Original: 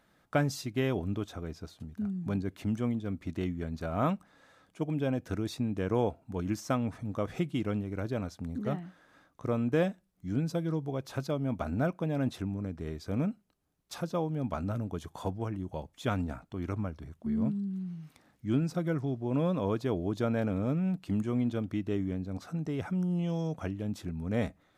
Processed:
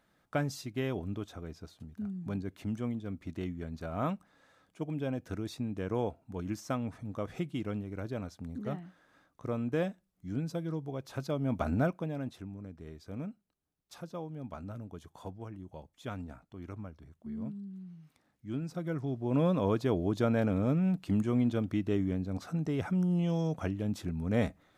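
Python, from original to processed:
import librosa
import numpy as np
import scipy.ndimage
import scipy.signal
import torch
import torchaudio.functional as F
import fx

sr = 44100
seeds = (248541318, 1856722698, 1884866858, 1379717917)

y = fx.gain(x, sr, db=fx.line((11.09, -4.0), (11.71, 3.0), (12.31, -9.0), (18.47, -9.0), (19.4, 1.5)))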